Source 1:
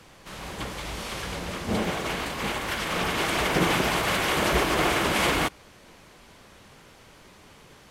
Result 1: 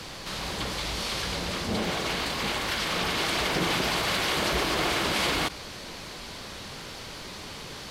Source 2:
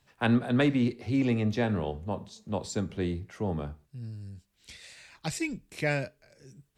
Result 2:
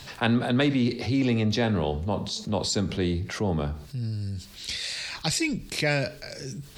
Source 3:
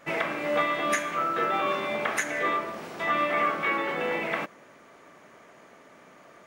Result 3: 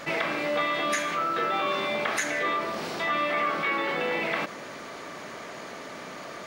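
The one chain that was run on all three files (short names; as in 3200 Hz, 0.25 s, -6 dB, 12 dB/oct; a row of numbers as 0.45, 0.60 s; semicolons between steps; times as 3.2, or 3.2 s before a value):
bell 4400 Hz +8.5 dB 0.84 oct; fast leveller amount 50%; match loudness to -27 LUFS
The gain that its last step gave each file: -5.5, 0.0, -3.0 dB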